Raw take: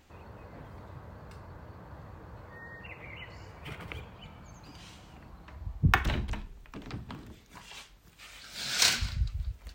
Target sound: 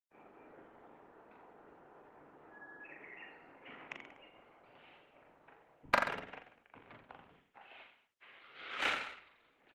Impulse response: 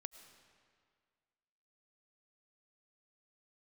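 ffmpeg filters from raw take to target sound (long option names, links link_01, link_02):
-filter_complex "[0:a]agate=range=-35dB:threshold=-51dB:ratio=16:detection=peak,bandreject=frequency=60:width_type=h:width=6,bandreject=frequency=120:width_type=h:width=6,bandreject=frequency=180:width_type=h:width=6,bandreject=frequency=240:width_type=h:width=6,bandreject=frequency=300:width_type=h:width=6,bandreject=frequency=360:width_type=h:width=6,highpass=frequency=410:width_type=q:width=0.5412,highpass=frequency=410:width_type=q:width=1.307,lowpass=frequency=3100:width_type=q:width=0.5176,lowpass=frequency=3100:width_type=q:width=0.7071,lowpass=frequency=3100:width_type=q:width=1.932,afreqshift=-170,asoftclip=type=tanh:threshold=-19dB,aeval=exprs='0.112*(cos(1*acos(clip(val(0)/0.112,-1,1)))-cos(1*PI/2))+0.0251*(cos(3*acos(clip(val(0)/0.112,-1,1)))-cos(3*PI/2))':channel_layout=same,bandreject=frequency=1100:width=22,asplit=2[link_01][link_02];[link_02]aecho=0:1:40|84|132.4|185.6|244.2:0.631|0.398|0.251|0.158|0.1[link_03];[link_01][link_03]amix=inputs=2:normalize=0,volume=3dB" -ar 48000 -c:a libopus -b:a 16k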